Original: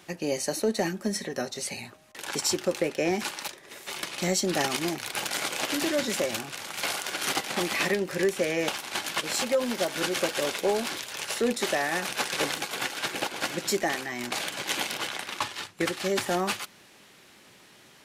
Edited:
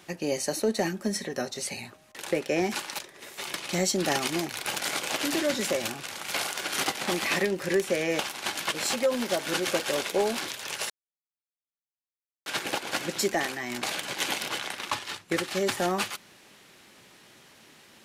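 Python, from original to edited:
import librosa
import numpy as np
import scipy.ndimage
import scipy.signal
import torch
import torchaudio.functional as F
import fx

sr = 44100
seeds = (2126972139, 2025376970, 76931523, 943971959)

y = fx.edit(x, sr, fx.cut(start_s=2.28, length_s=0.49),
    fx.silence(start_s=11.39, length_s=1.56), tone=tone)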